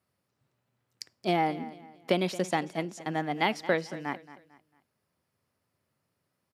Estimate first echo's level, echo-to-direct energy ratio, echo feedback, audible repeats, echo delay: −16.5 dB, −16.0 dB, 35%, 3, 224 ms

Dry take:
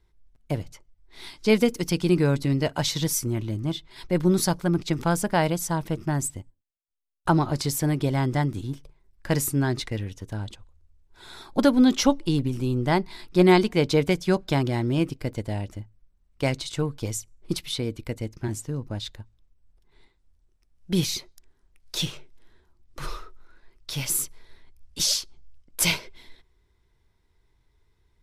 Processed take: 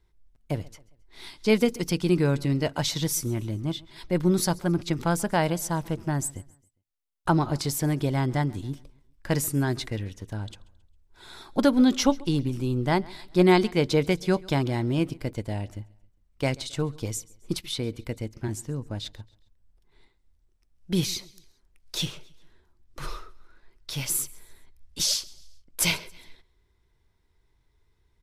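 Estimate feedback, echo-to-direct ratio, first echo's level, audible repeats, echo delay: 43%, −22.5 dB, −23.5 dB, 2, 135 ms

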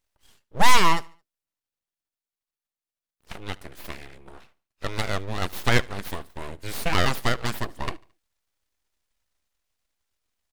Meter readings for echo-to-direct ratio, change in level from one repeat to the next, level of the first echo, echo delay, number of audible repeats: −23.0 dB, −7.5 dB, −24.0 dB, 73 ms, 2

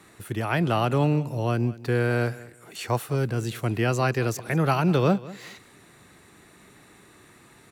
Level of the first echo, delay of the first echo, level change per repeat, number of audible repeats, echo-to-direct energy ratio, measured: −19.0 dB, 196 ms, −13.0 dB, 2, −19.0 dB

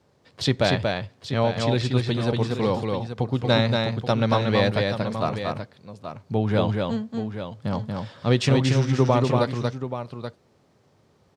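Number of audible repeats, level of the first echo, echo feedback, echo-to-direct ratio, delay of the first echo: 2, −3.5 dB, repeats not evenly spaced, −2.5 dB, 234 ms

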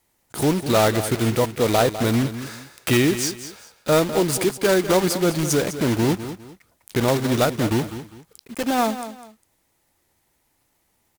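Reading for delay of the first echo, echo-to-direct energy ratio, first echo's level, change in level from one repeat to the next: 202 ms, −11.5 dB, −12.0 dB, −11.0 dB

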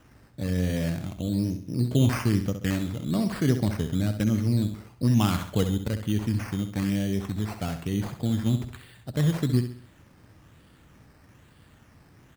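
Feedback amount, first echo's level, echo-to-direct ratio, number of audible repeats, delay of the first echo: 39%, −9.0 dB, −8.5 dB, 4, 66 ms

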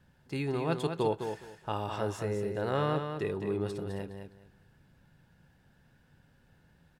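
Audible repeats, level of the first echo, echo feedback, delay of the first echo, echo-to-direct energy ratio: 3, −7.0 dB, 20%, 208 ms, −7.0 dB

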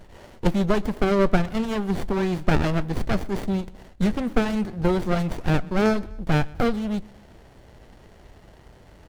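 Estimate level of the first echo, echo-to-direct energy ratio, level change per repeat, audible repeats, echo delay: −23.5 dB, −22.0 dB, −4.5 dB, 2, 126 ms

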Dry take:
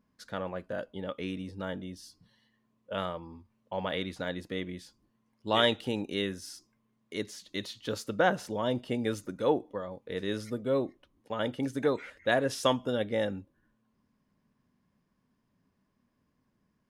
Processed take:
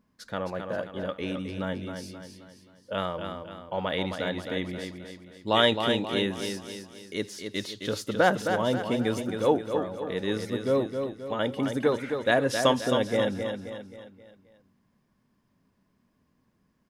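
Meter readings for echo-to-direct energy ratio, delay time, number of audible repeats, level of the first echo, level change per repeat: −5.5 dB, 265 ms, 5, −6.5 dB, −7.0 dB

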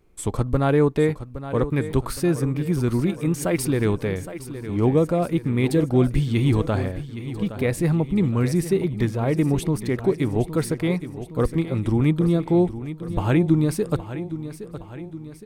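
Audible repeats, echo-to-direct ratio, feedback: 5, −11.0 dB, 53%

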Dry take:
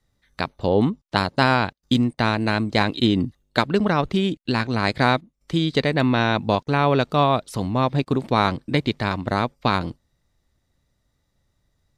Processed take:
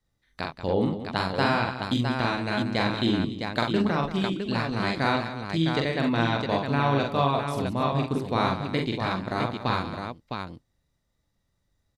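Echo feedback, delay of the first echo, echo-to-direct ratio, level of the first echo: repeats not evenly spaced, 43 ms, −0.5 dB, −3.5 dB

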